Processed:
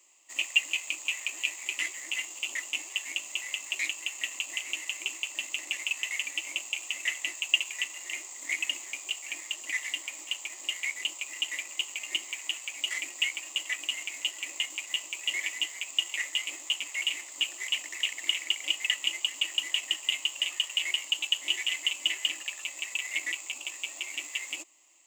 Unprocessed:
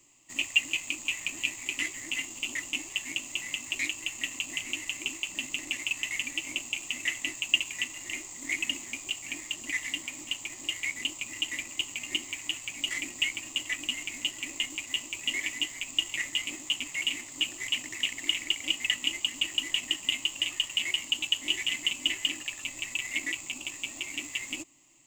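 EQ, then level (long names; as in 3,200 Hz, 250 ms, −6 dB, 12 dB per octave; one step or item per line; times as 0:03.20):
high-pass filter 430 Hz 24 dB per octave
0.0 dB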